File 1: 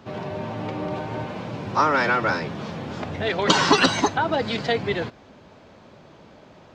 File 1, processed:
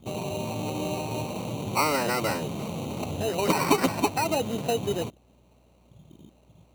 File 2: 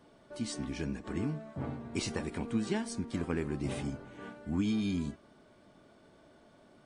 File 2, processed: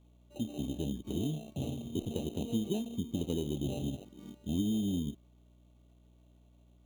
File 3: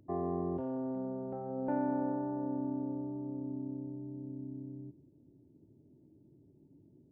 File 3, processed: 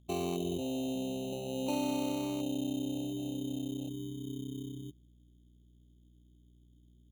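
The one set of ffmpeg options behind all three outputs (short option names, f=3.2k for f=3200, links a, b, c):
-filter_complex "[0:a]afwtdn=0.0158,lowpass=f=1.2k:w=0.5412,lowpass=f=1.2k:w=1.3066,asplit=2[a][b];[b]acompressor=threshold=-36dB:ratio=6,volume=3dB[c];[a][c]amix=inputs=2:normalize=0,aeval=exprs='val(0)+0.00158*(sin(2*PI*60*n/s)+sin(2*PI*2*60*n/s)/2+sin(2*PI*3*60*n/s)/3+sin(2*PI*4*60*n/s)/4+sin(2*PI*5*60*n/s)/5)':c=same,acrusher=samples=13:mix=1:aa=0.000001,volume=-4.5dB"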